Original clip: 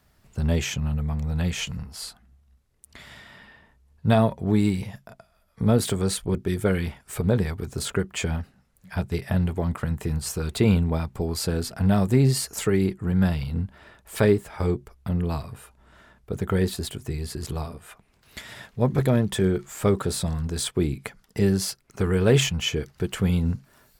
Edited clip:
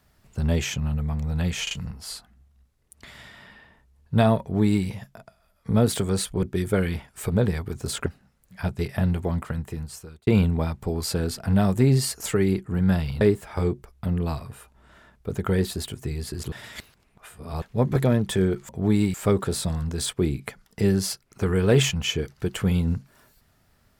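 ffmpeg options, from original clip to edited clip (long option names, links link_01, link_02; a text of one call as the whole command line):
ffmpeg -i in.wav -filter_complex "[0:a]asplit=10[link_01][link_02][link_03][link_04][link_05][link_06][link_07][link_08][link_09][link_10];[link_01]atrim=end=1.672[link_11];[link_02]atrim=start=1.628:end=1.672[link_12];[link_03]atrim=start=1.628:end=7.982[link_13];[link_04]atrim=start=8.388:end=10.6,asetpts=PTS-STARTPTS,afade=type=out:start_time=1.232:duration=0.98[link_14];[link_05]atrim=start=10.6:end=13.542,asetpts=PTS-STARTPTS,afade=type=in:duration=0.004:curve=hsin[link_15];[link_06]atrim=start=14.238:end=17.552[link_16];[link_07]atrim=start=17.548:end=18.652,asetpts=PTS-STARTPTS,areverse[link_17];[link_08]atrim=start=18.648:end=19.722[link_18];[link_09]atrim=start=4.328:end=4.782[link_19];[link_10]atrim=start=19.718[link_20];[link_11][link_12]acrossfade=duration=0.004:curve1=hsin:curve2=hsin[link_21];[link_21][link_13]acrossfade=duration=0.004:curve1=hsin:curve2=hsin[link_22];[link_14][link_15]concat=n=2:v=0:a=1[link_23];[link_22][link_23]acrossfade=duration=0.004:curve1=hsin:curve2=hsin[link_24];[link_24][link_16]acrossfade=duration=0.004:curve1=hsin:curve2=hsin[link_25];[link_25][link_17]acrossfade=duration=0.004:curve1=hsin:curve2=hsin[link_26];[link_26][link_18]acrossfade=duration=0.004:curve1=hsin:curve2=hsin[link_27];[link_27][link_19]acrossfade=duration=0.004:curve1=hsin:curve2=hsin[link_28];[link_28][link_20]acrossfade=duration=0.004:curve1=hsin:curve2=hsin" out.wav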